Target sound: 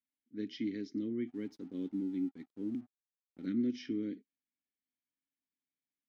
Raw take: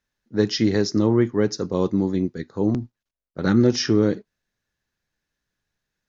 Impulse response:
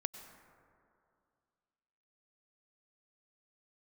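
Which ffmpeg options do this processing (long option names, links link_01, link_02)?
-filter_complex "[0:a]asplit=3[link_01][link_02][link_03];[link_01]bandpass=frequency=270:width_type=q:width=8,volume=0dB[link_04];[link_02]bandpass=frequency=2290:width_type=q:width=8,volume=-6dB[link_05];[link_03]bandpass=frequency=3010:width_type=q:width=8,volume=-9dB[link_06];[link_04][link_05][link_06]amix=inputs=3:normalize=0,asplit=3[link_07][link_08][link_09];[link_07]afade=type=out:start_time=1.27:duration=0.02[link_10];[link_08]aeval=exprs='sgn(val(0))*max(abs(val(0))-0.00119,0)':channel_layout=same,afade=type=in:start_time=1.27:duration=0.02,afade=type=out:start_time=3.45:duration=0.02[link_11];[link_09]afade=type=in:start_time=3.45:duration=0.02[link_12];[link_10][link_11][link_12]amix=inputs=3:normalize=0,volume=-6.5dB"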